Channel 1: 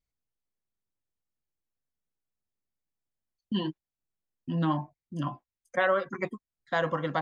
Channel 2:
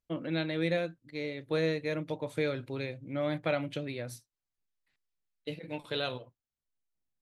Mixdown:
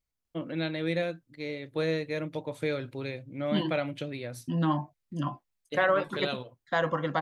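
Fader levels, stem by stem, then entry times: +0.5, +0.5 dB; 0.00, 0.25 s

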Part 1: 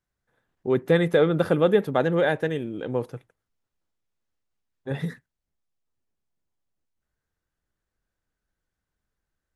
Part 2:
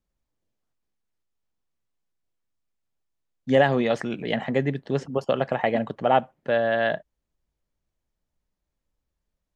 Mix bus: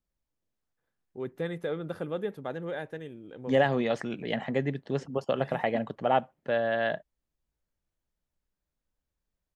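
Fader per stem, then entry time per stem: -13.5, -5.0 dB; 0.50, 0.00 s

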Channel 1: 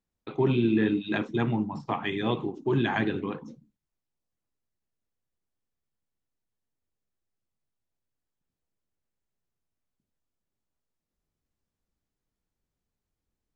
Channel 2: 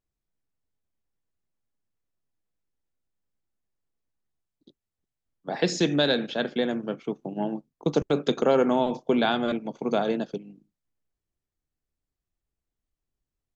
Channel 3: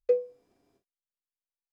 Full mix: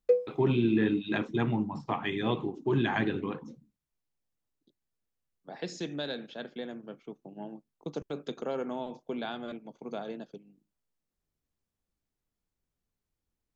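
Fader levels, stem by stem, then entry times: -2.0, -13.0, +0.5 dB; 0.00, 0.00, 0.00 s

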